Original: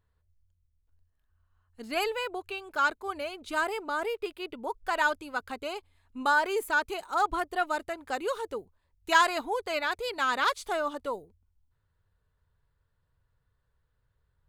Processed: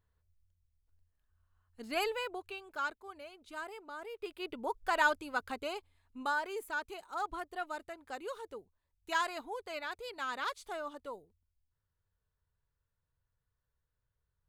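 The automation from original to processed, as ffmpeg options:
ffmpeg -i in.wav -af "volume=8dB,afade=type=out:start_time=2.08:duration=1.02:silence=0.316228,afade=type=in:start_time=4.09:duration=0.42:silence=0.251189,afade=type=out:start_time=5.5:duration=0.94:silence=0.375837" out.wav

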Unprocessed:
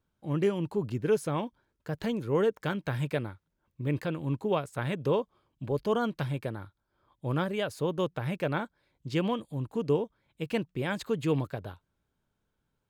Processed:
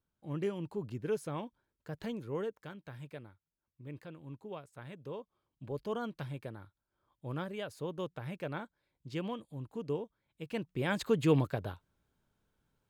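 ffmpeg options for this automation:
ffmpeg -i in.wav -af "volume=9dB,afade=type=out:start_time=2.15:duration=0.55:silence=0.398107,afade=type=in:start_time=5.14:duration=0.56:silence=0.446684,afade=type=in:start_time=10.5:duration=0.55:silence=0.316228" out.wav

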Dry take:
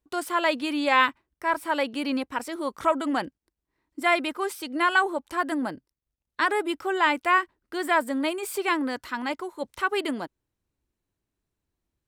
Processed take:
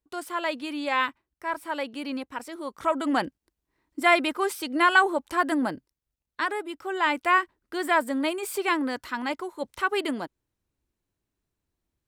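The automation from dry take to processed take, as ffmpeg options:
ffmpeg -i in.wav -af "volume=10.5dB,afade=type=in:start_time=2.77:duration=0.43:silence=0.421697,afade=type=out:start_time=5.73:duration=0.97:silence=0.298538,afade=type=in:start_time=6.7:duration=0.56:silence=0.398107" out.wav

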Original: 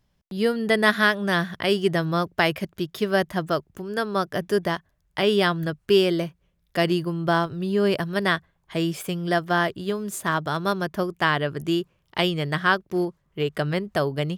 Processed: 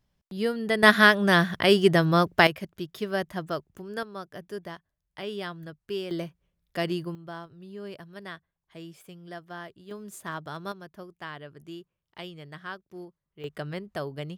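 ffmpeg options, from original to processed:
ffmpeg -i in.wav -af "asetnsamples=nb_out_samples=441:pad=0,asendcmd='0.83 volume volume 2.5dB;2.47 volume volume -7dB;4.03 volume volume -14.5dB;6.11 volume volume -7dB;7.15 volume volume -18.5dB;9.91 volume volume -11.5dB;10.72 volume volume -18dB;13.44 volume volume -10dB',volume=-5dB" out.wav

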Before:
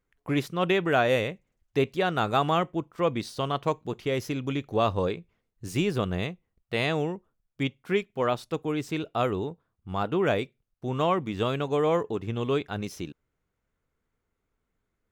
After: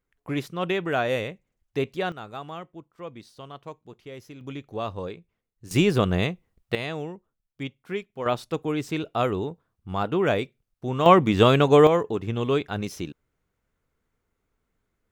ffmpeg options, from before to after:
ffmpeg -i in.wav -af "asetnsamples=nb_out_samples=441:pad=0,asendcmd='2.12 volume volume -13dB;4.41 volume volume -6.5dB;5.71 volume volume 6dB;6.75 volume volume -5dB;8.26 volume volume 2dB;11.06 volume volume 10.5dB;11.87 volume volume 3dB',volume=-2dB" out.wav

